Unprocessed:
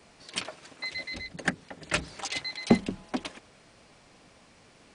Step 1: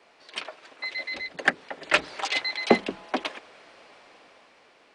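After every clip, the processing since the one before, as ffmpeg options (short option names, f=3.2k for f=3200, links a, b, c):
-filter_complex "[0:a]acrossover=split=330 4300:gain=0.0891 1 0.2[a][b][c];[a][b][c]amix=inputs=3:normalize=0,dynaudnorm=f=450:g=5:m=8dB,volume=1dB"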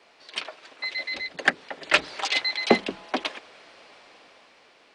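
-af "equalizer=f=4.2k:w=0.83:g=4"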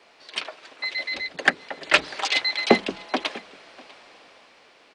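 -af "aecho=1:1:646:0.0708,volume=2dB"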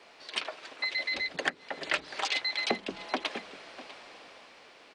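-af "acompressor=threshold=-28dB:ratio=5"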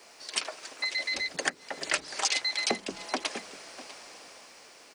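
-af "aexciter=amount=4.8:drive=5.8:freq=5.1k"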